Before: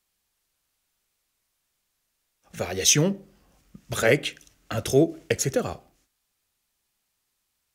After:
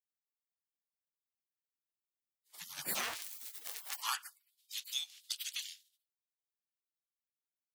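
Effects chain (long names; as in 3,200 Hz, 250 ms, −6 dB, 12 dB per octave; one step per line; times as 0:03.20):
0:02.90–0:03.97: converter with a step at zero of −28.5 dBFS
gate on every frequency bin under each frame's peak −30 dB weak
high-pass filter sweep 160 Hz → 3,400 Hz, 0:03.34–0:04.55
level +2.5 dB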